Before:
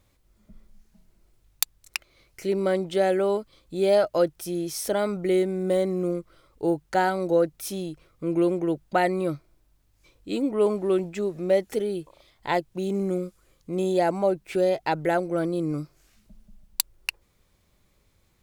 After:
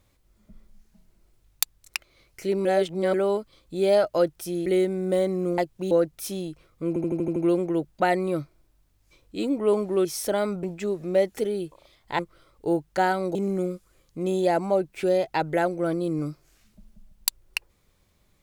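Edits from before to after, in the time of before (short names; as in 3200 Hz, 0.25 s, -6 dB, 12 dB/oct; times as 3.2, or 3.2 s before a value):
2.65–3.14 reverse
4.66–5.24 move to 10.98
6.16–7.32 swap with 12.54–12.87
8.29 stutter 0.08 s, 7 plays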